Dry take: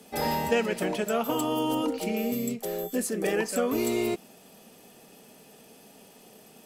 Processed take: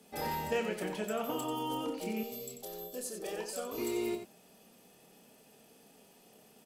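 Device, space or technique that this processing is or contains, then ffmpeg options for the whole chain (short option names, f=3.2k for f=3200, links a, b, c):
slapback doubling: -filter_complex "[0:a]asplit=3[a][b][c];[b]adelay=28,volume=-7.5dB[d];[c]adelay=91,volume=-8dB[e];[a][d][e]amix=inputs=3:normalize=0,asettb=1/sr,asplit=3[f][g][h];[f]atrim=end=2.234[i];[g]atrim=start=2.23:end=3.78,asetpts=PTS-STARTPTS,afade=t=in:d=0.004:c=qsin,afade=t=out:st=1.546:d=0.004:c=qsin,equalizer=f=125:t=o:w=1:g=-5,equalizer=f=250:t=o:w=1:g=-11,equalizer=f=2k:t=o:w=1:g=-10,equalizer=f=4k:t=o:w=1:g=5[j];[h]atrim=start=3.776[k];[i][j]acrossfade=d=0.004:c1=hsin:c2=qsin[l];[l][k]acrossfade=d=0.004:c1=qsin:c2=hsin,volume=-9dB"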